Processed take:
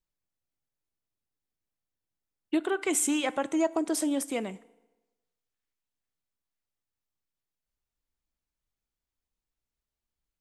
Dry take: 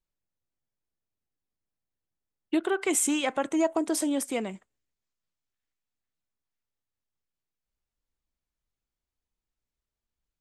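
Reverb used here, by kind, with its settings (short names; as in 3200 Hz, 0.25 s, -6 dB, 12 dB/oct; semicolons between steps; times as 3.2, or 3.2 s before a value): FDN reverb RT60 1.1 s, low-frequency decay 0.9×, high-frequency decay 0.8×, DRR 18.5 dB; gain -1.5 dB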